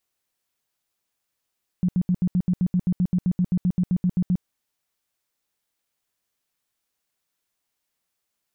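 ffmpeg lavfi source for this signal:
-f lavfi -i "aevalsrc='0.141*sin(2*PI*180*mod(t,0.13))*lt(mod(t,0.13),10/180)':d=2.6:s=44100"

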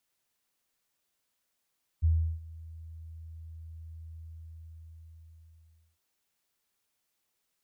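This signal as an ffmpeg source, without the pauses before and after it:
-f lavfi -i "aevalsrc='0.1*sin(2*PI*81.1*t)':d=3.96:s=44100,afade=t=in:d=0.026,afade=t=out:st=0.026:d=0.348:silence=0.0794,afade=t=out:st=2.14:d=1.82"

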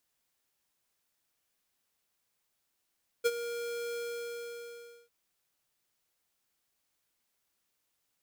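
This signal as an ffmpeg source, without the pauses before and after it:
-f lavfi -i "aevalsrc='0.0596*(2*lt(mod(472*t,1),0.5)-1)':d=1.85:s=44100,afade=t=in:d=0.021,afade=t=out:st=0.021:d=0.043:silence=0.237,afade=t=out:st=0.72:d=1.13"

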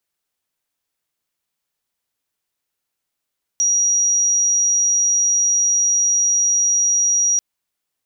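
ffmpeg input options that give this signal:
-f lavfi -i "aevalsrc='0.211*sin(2*PI*5750*t)':d=3.79:s=44100"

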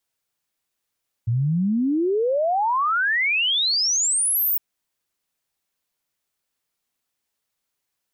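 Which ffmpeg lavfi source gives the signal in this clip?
-f lavfi -i "aevalsrc='0.126*clip(min(t,3.31-t)/0.01,0,1)*sin(2*PI*110*3.31/log(16000/110)*(exp(log(16000/110)*t/3.31)-1))':d=3.31:s=44100"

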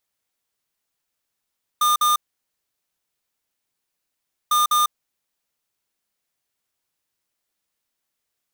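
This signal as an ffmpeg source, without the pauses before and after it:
-f lavfi -i "aevalsrc='0.133*(2*lt(mod(1210*t,1),0.5)-1)*clip(min(mod(mod(t,2.7),0.2),0.15-mod(mod(t,2.7),0.2))/0.005,0,1)*lt(mod(t,2.7),0.4)':d=5.4:s=44100"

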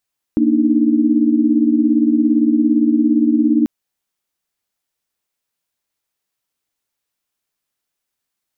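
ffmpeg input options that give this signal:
-f lavfi -i "aevalsrc='0.168*(sin(2*PI*233.08*t)+sin(2*PI*293.66*t)+sin(2*PI*311.13*t))':d=3.29:s=44100"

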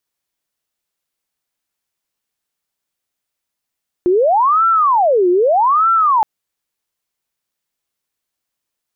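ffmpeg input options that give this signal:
-f lavfi -i "aevalsrc='0.335*sin(2*PI*(851.5*t-498.5/(2*PI*0.81)*sin(2*PI*0.81*t)))':d=2.17:s=44100"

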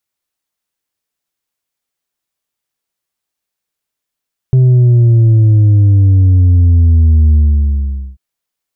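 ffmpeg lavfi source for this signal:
-f lavfi -i "aevalsrc='0.562*clip((3.64-t)/0.83,0,1)*tanh(1.5*sin(2*PI*130*3.64/log(65/130)*(exp(log(65/130)*t/3.64)-1)))/tanh(1.5)':d=3.64:s=44100"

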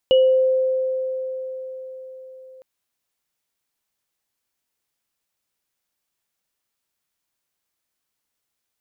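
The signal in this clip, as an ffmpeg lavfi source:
-f lavfi -i "aevalsrc='0.299*pow(10,-3*t/4.81)*sin(2*PI*520*t)+0.0944*pow(10,-3*t/0.4)*sin(2*PI*2920*t)':d=2.51:s=44100"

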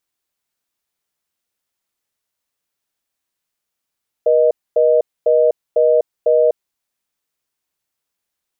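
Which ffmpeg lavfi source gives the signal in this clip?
-f lavfi -i "aevalsrc='0.237*(sin(2*PI*480*t)+sin(2*PI*620*t))*clip(min(mod(t,0.5),0.25-mod(t,0.5))/0.005,0,1)':d=2.47:s=44100"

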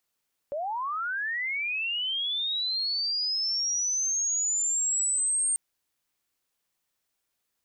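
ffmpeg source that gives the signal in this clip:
-f lavfi -i "aevalsrc='pow(10,(-28.5+5.5*t/5.04)/20)*sin(2*PI*(550*t+8150*t*t/(2*5.04)))':d=5.04:s=44100"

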